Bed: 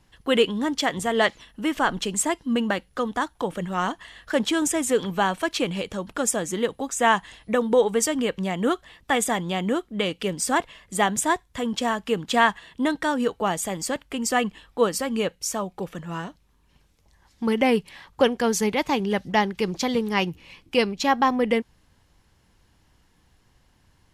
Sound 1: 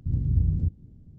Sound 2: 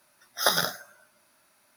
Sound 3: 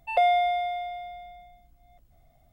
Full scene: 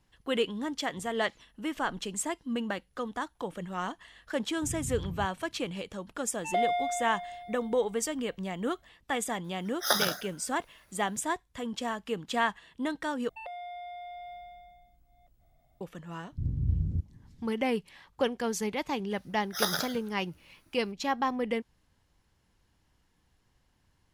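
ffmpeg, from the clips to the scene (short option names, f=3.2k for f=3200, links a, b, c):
-filter_complex "[1:a]asplit=2[a][b];[3:a]asplit=2[c][d];[2:a]asplit=2[e][f];[0:a]volume=-9dB[g];[a]lowshelf=f=84:g=-11.5[h];[d]acompressor=threshold=-34dB:ratio=6:attack=3.2:release=140:knee=1:detection=peak[i];[g]asplit=2[j][k];[j]atrim=end=13.294[l];[i]atrim=end=2.52,asetpts=PTS-STARTPTS,volume=-5.5dB[m];[k]atrim=start=15.806[n];[h]atrim=end=1.18,asetpts=PTS-STARTPTS,volume=-8.5dB,afade=t=in:d=0.004:c=hsin,afade=t=out:st=1.176:d=0.004:c=hsin,adelay=201537S[o];[c]atrim=end=2.52,asetpts=PTS-STARTPTS,volume=-6.5dB,afade=t=in:d=0.004:c=hsin,afade=t=out:st=2.516:d=0.004:c=hsin,adelay=6370[p];[e]atrim=end=1.76,asetpts=PTS-STARTPTS,volume=-3dB,afade=t=in:d=0.004:c=hsin,afade=t=out:st=1.756:d=0.004:c=hsin,adelay=9440[q];[b]atrim=end=1.18,asetpts=PTS-STARTPTS,volume=-5.5dB,afade=t=in:d=0.004:c=hsin,afade=t=out:st=1.176:d=0.004:c=hsin,adelay=16320[r];[f]atrim=end=1.76,asetpts=PTS-STARTPTS,volume=-6dB,afade=t=in:d=0.004:c=hsin,afade=t=out:st=1.756:d=0.004:c=hsin,adelay=19160[s];[l][m]acrossfade=d=0.004:c1=hsin:c2=hsin[t];[t][n]acrossfade=d=0.004:c1=hsin:c2=hsin[u];[u][o][p][q][r][s]amix=inputs=6:normalize=0"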